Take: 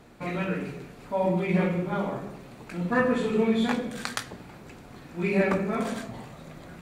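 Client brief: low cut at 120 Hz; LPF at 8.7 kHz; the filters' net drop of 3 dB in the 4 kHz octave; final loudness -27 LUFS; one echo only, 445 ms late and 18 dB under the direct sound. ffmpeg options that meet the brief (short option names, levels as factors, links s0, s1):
-af "highpass=120,lowpass=8700,equalizer=f=4000:t=o:g=-3.5,aecho=1:1:445:0.126,volume=1.12"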